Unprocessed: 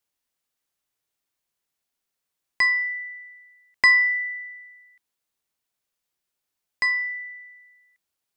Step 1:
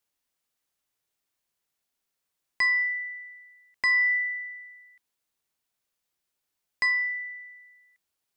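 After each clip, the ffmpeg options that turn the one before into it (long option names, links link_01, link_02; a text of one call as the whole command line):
ffmpeg -i in.wav -af "alimiter=limit=-18.5dB:level=0:latency=1:release=205" out.wav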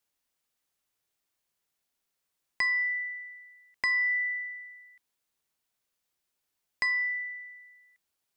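ffmpeg -i in.wav -af "acompressor=threshold=-27dB:ratio=2.5" out.wav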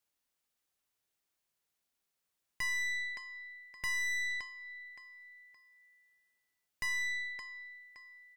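ffmpeg -i in.wav -af "aecho=1:1:569|1138|1707:0.237|0.0759|0.0243,aeval=exprs='(tanh(44.7*val(0)+0.6)-tanh(0.6))/44.7':channel_layout=same" out.wav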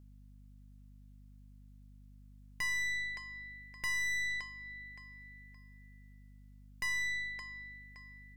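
ffmpeg -i in.wav -af "aeval=exprs='val(0)+0.00178*(sin(2*PI*50*n/s)+sin(2*PI*2*50*n/s)/2+sin(2*PI*3*50*n/s)/3+sin(2*PI*4*50*n/s)/4+sin(2*PI*5*50*n/s)/5)':channel_layout=same" out.wav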